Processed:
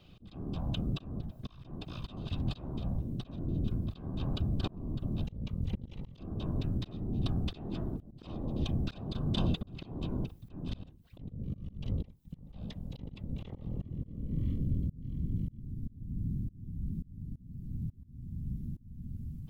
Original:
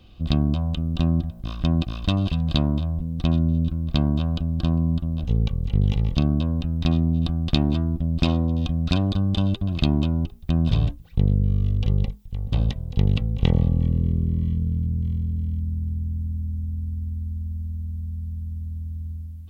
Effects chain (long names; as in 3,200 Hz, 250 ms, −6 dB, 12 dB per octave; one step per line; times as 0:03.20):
parametric band 180 Hz −12 dB 0.47 octaves
random phases in short frames
volume swells 467 ms
level −5 dB